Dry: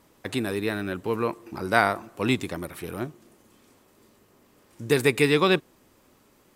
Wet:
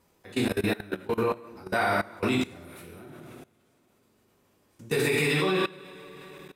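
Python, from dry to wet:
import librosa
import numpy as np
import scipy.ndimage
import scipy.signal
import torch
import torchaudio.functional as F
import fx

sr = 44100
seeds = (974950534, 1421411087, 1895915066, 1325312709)

y = fx.rev_double_slope(x, sr, seeds[0], early_s=0.76, late_s=3.4, knee_db=-19, drr_db=-6.5)
y = fx.level_steps(y, sr, step_db=21)
y = y * librosa.db_to_amplitude(-3.5)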